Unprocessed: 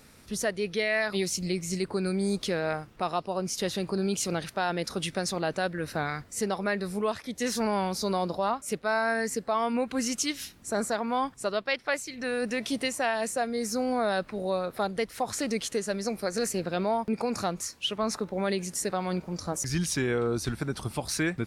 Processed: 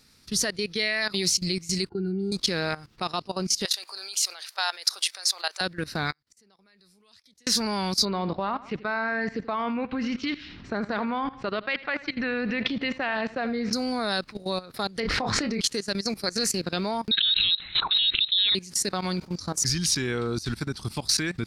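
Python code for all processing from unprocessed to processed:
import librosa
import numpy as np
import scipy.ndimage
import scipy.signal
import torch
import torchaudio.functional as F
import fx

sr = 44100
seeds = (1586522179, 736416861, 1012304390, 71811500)

y = fx.chain(x, sr, fx.octave_resonator(note='F', decay_s=0.1),
    fx.small_body(hz=(400.0, 830.0), ring_ms=65, db=8), at=(1.89, 2.32))
y = fx.chain(y, sr, fx.highpass(hz=660.0, slope=24),
    fx.high_shelf(hz=8300.0, db=10.0), at=(3.65, 5.61))
y = fx.chain(y, sr, fx.low_shelf(hz=250.0, db=-5.5),
    fx.gate_flip(shuts_db=-35.0, range_db=-30),
    fx.band_squash(depth_pct=100), at=(6.12, 7.47))
y = fx.chain(y, sr, fx.lowpass(hz=2800.0, slope=24),
    fx.echo_feedback(ms=81, feedback_pct=36, wet_db=-15.5),
    fx.env_flatten(amount_pct=50), at=(8.05, 13.73))
y = fx.chain(y, sr, fx.lowpass(hz=2100.0, slope=12),
    fx.doubler(ms=27.0, db=-8.0),
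    fx.env_flatten(amount_pct=100), at=(15.0, 15.61))
y = fx.chain(y, sr, fx.freq_invert(carrier_hz=4000),
    fx.pre_swell(db_per_s=73.0), at=(17.11, 18.55))
y = fx.peak_eq(y, sr, hz=600.0, db=-7.0, octaves=1.1)
y = fx.level_steps(y, sr, step_db=17)
y = fx.peak_eq(y, sr, hz=4600.0, db=10.5, octaves=0.78)
y = F.gain(torch.from_numpy(y), 6.0).numpy()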